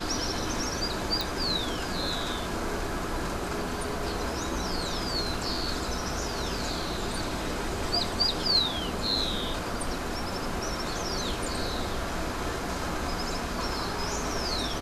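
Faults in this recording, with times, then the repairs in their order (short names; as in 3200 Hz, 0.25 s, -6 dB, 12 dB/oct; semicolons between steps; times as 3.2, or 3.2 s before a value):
1.21 pop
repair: de-click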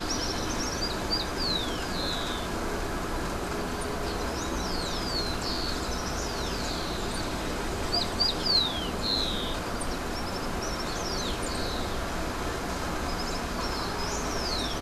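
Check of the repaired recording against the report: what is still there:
none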